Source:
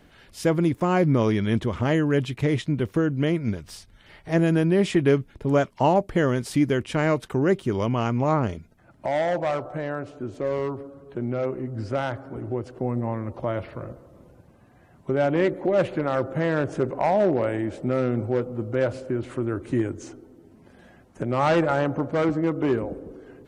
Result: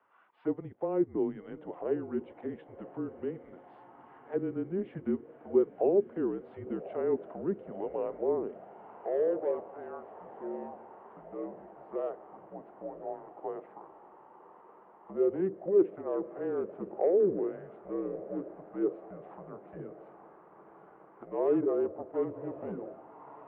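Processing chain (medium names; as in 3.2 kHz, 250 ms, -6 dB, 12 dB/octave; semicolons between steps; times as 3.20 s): distance through air 120 m; echo that smears into a reverb 1091 ms, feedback 75%, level -15.5 dB; auto-wah 560–1200 Hz, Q 4.5, down, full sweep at -16.5 dBFS; mistuned SSB -190 Hz 410–3500 Hz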